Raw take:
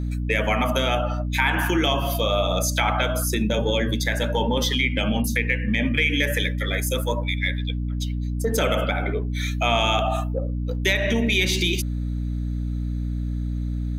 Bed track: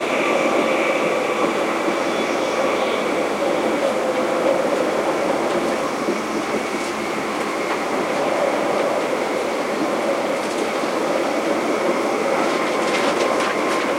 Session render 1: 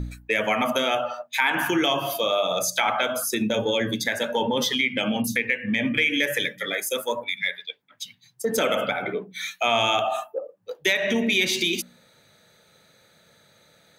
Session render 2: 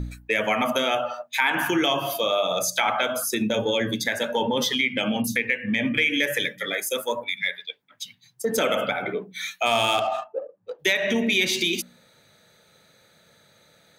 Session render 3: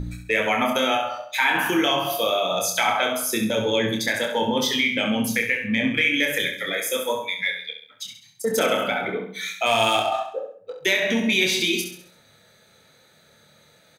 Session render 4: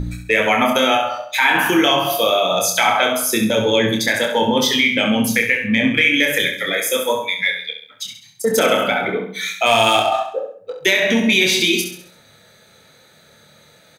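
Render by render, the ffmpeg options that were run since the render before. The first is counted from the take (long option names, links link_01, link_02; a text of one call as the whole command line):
ffmpeg -i in.wav -af "bandreject=frequency=60:width_type=h:width=4,bandreject=frequency=120:width_type=h:width=4,bandreject=frequency=180:width_type=h:width=4,bandreject=frequency=240:width_type=h:width=4,bandreject=frequency=300:width_type=h:width=4" out.wav
ffmpeg -i in.wav -filter_complex "[0:a]asplit=3[link_01][link_02][link_03];[link_01]afade=type=out:start_time=9.65:duration=0.02[link_04];[link_02]adynamicsmooth=sensitivity=4:basefreq=2300,afade=type=in:start_time=9.65:duration=0.02,afade=type=out:start_time=10.78:duration=0.02[link_05];[link_03]afade=type=in:start_time=10.78:duration=0.02[link_06];[link_04][link_05][link_06]amix=inputs=3:normalize=0" out.wav
ffmpeg -i in.wav -filter_complex "[0:a]asplit=2[link_01][link_02];[link_02]adelay=27,volume=-5.5dB[link_03];[link_01][link_03]amix=inputs=2:normalize=0,aecho=1:1:67|134|201|268|335:0.398|0.175|0.0771|0.0339|0.0149" out.wav
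ffmpeg -i in.wav -af "volume=6dB,alimiter=limit=-3dB:level=0:latency=1" out.wav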